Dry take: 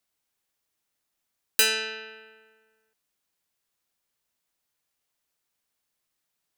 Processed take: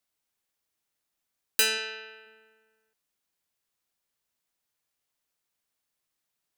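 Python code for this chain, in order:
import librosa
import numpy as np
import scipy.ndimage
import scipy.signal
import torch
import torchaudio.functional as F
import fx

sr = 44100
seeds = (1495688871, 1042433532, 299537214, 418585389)

y = fx.highpass(x, sr, hz=330.0, slope=12, at=(1.77, 2.25), fade=0.02)
y = y * 10.0 ** (-2.5 / 20.0)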